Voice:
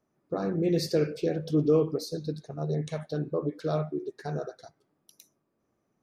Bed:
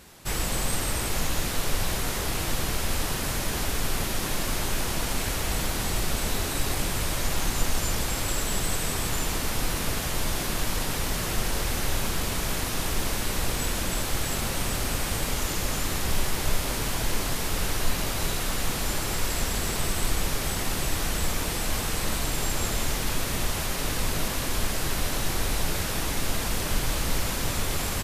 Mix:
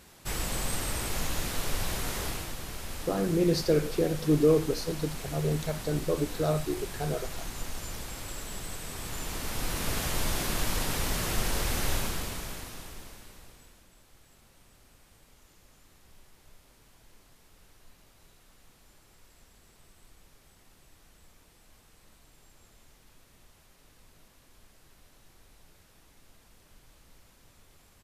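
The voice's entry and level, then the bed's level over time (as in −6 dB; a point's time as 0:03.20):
2.75 s, +1.0 dB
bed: 0:02.26 −4.5 dB
0:02.55 −11.5 dB
0:08.85 −11.5 dB
0:10.01 −2 dB
0:11.93 −2 dB
0:13.89 −31.5 dB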